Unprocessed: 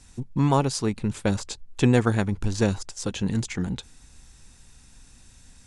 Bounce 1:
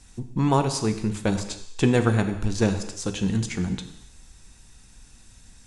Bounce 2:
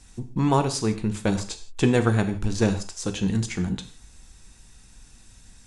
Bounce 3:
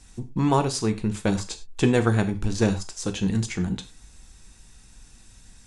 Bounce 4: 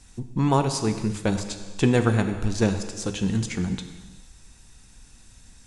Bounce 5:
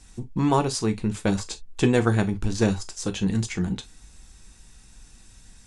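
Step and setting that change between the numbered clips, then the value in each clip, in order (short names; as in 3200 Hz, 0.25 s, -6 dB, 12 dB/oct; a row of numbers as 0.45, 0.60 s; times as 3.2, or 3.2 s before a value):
non-linear reverb, gate: 340, 190, 130, 500, 80 ms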